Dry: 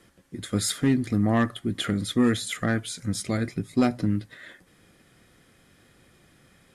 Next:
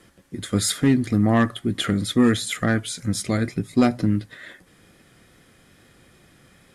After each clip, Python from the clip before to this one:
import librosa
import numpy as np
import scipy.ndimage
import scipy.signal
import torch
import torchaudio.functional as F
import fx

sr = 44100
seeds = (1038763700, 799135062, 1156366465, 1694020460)

y = fx.wow_flutter(x, sr, seeds[0], rate_hz=2.1, depth_cents=22.0)
y = y * librosa.db_to_amplitude(4.0)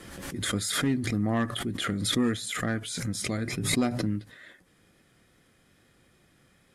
y = fx.pre_swell(x, sr, db_per_s=40.0)
y = y * librosa.db_to_amplitude(-9.0)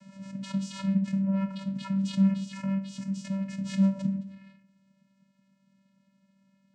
y = fx.room_shoebox(x, sr, seeds[1], volume_m3=850.0, walls='furnished', distance_m=1.2)
y = fx.vocoder(y, sr, bands=8, carrier='square', carrier_hz=194.0)
y = fx.high_shelf(y, sr, hz=4900.0, db=11.0)